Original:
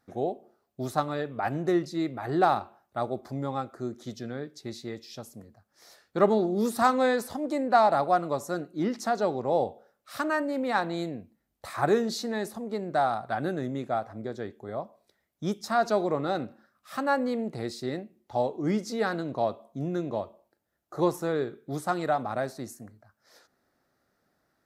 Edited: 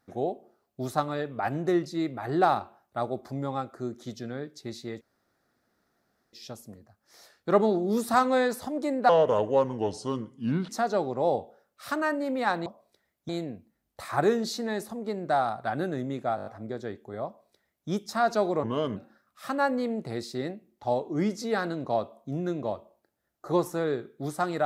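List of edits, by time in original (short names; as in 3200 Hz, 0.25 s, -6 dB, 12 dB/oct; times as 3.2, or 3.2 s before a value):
5.01 insert room tone 1.32 s
7.77–8.97 speed 75%
14.01 stutter 0.02 s, 6 plays
14.81–15.44 copy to 10.94
16.18–16.45 speed 80%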